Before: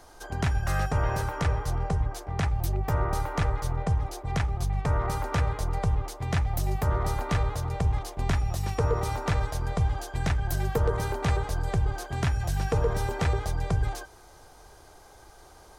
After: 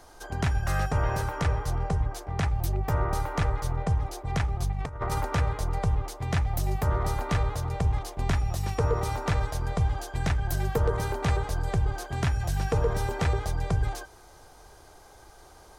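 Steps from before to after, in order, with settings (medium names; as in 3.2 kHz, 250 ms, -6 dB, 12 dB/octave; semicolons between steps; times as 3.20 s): 4.72–5.25 s: compressor with a negative ratio -29 dBFS, ratio -0.5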